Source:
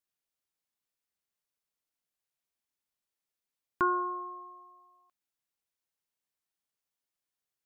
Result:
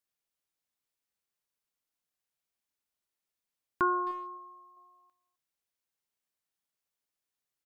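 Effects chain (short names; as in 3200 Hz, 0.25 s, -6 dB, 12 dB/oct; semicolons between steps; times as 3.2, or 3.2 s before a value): 4.11–4.77 bell 540 Hz -7.5 dB 2.3 oct; speakerphone echo 0.26 s, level -18 dB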